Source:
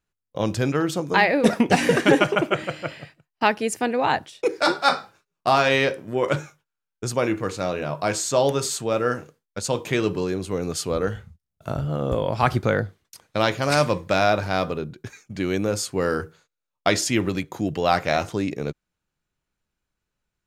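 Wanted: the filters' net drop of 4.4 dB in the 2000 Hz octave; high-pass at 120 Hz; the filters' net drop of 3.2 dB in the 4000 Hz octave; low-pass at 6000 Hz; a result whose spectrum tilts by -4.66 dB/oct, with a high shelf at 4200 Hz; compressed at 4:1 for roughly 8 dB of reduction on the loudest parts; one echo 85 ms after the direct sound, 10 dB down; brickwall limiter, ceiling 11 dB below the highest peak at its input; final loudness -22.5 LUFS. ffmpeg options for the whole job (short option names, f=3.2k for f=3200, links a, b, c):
-af "highpass=120,lowpass=6k,equalizer=f=2k:t=o:g=-6,equalizer=f=4k:t=o:g=-3.5,highshelf=f=4.2k:g=4,acompressor=threshold=-22dB:ratio=4,alimiter=limit=-19.5dB:level=0:latency=1,aecho=1:1:85:0.316,volume=8.5dB"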